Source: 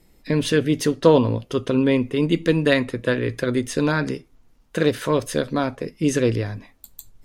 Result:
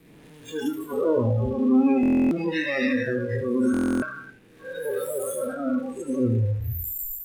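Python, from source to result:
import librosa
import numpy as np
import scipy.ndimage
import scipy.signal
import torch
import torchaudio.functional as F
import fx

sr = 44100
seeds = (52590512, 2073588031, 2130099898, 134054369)

p1 = fx.spec_blur(x, sr, span_ms=384.0)
p2 = fx.high_shelf(p1, sr, hz=5200.0, db=10.0)
p3 = fx.fixed_phaser(p2, sr, hz=2200.0, stages=4)
p4 = fx.fuzz(p3, sr, gain_db=48.0, gate_db=-54.0)
p5 = p3 + F.gain(torch.from_numpy(p4), -11.0).numpy()
p6 = fx.rev_spring(p5, sr, rt60_s=1.5, pass_ms=(35,), chirp_ms=40, drr_db=10.0)
p7 = fx.noise_reduce_blind(p6, sr, reduce_db=27)
p8 = p7 + 10.0 ** (-12.0 / 20.0) * np.pad(p7, (int(74 * sr / 1000.0), 0))[:len(p7)]
y = fx.buffer_glitch(p8, sr, at_s=(2.01, 3.72), block=1024, repeats=12)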